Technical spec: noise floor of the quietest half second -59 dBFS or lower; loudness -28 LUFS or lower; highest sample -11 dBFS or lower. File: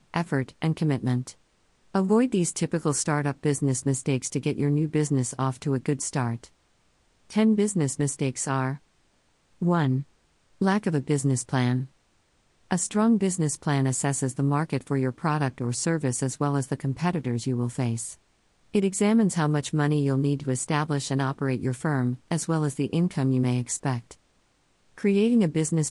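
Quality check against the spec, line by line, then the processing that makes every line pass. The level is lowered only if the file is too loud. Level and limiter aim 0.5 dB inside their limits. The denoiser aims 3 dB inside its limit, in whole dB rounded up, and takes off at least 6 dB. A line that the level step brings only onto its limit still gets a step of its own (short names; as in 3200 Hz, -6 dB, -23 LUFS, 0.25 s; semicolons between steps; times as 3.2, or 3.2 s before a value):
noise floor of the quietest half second -66 dBFS: OK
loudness -26.0 LUFS: fail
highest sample -8.5 dBFS: fail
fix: gain -2.5 dB; limiter -11.5 dBFS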